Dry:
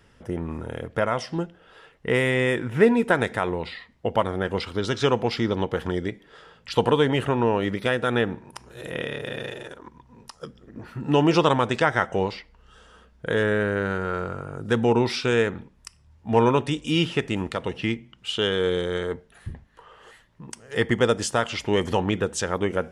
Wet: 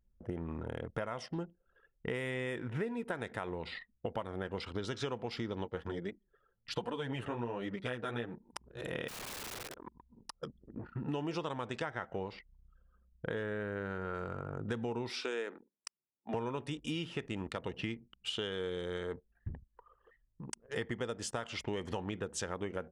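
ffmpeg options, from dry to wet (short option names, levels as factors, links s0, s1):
-filter_complex "[0:a]asplit=3[s0][s1][s2];[s0]afade=t=out:st=5.64:d=0.02[s3];[s1]flanger=delay=3.2:depth=8:regen=0:speed=1.3:shape=triangular,afade=t=in:st=5.64:d=0.02,afade=t=out:st=8.51:d=0.02[s4];[s2]afade=t=in:st=8.51:d=0.02[s5];[s3][s4][s5]amix=inputs=3:normalize=0,asettb=1/sr,asplit=3[s6][s7][s8];[s6]atrim=end=9.084[s9];[s7]atrim=start=9.08:end=9.74,asetpts=PTS-STARTPTS,afade=t=in:d=0.004:c=qsin,afade=t=out:st=0.656:d=0.004:c=qsin,aeval=exprs='(mod(53.1*val(0)+1,2)-1)/53.1':c=same[s10];[s8]atrim=start=9.736[s11];[s9][s10]acrossfade=d=0.004:c1=hsin:c2=qsin[s12];[s12][s11]acrossfade=d=0.004:c1=qsin:c2=hsin,asettb=1/sr,asplit=3[s13][s14][s15];[s13]atrim=end=11.904[s16];[s14]atrim=start=11.9:end=14.15,asetpts=PTS-STARTPTS,afade=t=in:d=0.004:c=qsin,afade=t=out:st=2.246:d=0.004:c=qsin,highshelf=f=5200:g=-10[s17];[s15]atrim=start=14.146[s18];[s16][s17]acrossfade=d=0.004:c1=hsin:c2=qsin[s19];[s19][s18]acrossfade=d=0.004:c1=qsin:c2=hsin,asettb=1/sr,asplit=3[s20][s21][s22];[s20]atrim=end=15.104[s23];[s21]atrim=start=15.1:end=16.34,asetpts=PTS-STARTPTS,afade=t=in:d=0.004:c=qsin,afade=t=out:st=1.236:d=0.004:c=qsin,highpass=f=280:w=0.5412,highpass=f=280:w=1.3066[s24];[s22]atrim=start=16.336[s25];[s23][s24]acrossfade=d=0.004:c1=hsin:c2=qsin[s26];[s26][s25]acrossfade=d=0.004:c1=qsin:c2=hsin,anlmdn=0.251,acompressor=threshold=0.0282:ratio=6,volume=0.631"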